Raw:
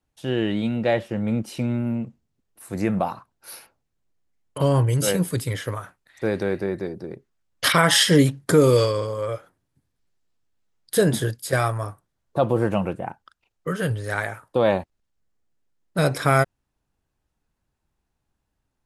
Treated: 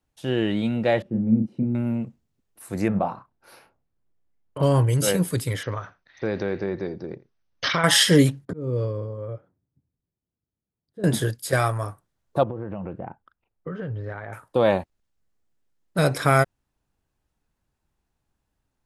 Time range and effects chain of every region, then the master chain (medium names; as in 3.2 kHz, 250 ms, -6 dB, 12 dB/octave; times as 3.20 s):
1.02–1.75 s: band-pass filter 220 Hz, Q 1.8 + bass shelf 220 Hz +9.5 dB + doubling 36 ms -5 dB
2.88–4.63 s: low-pass 1.3 kHz 6 dB/octave + doubling 30 ms -10.5 dB
5.63–7.84 s: delay 85 ms -20.5 dB + compression 2:1, threshold -22 dBFS + brick-wall FIR low-pass 6.4 kHz
8.45–11.04 s: slow attack 336 ms + band-pass filter 130 Hz, Q 0.59
12.43–14.33 s: compression 12:1, threshold -25 dBFS + tape spacing loss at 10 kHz 44 dB
whole clip: none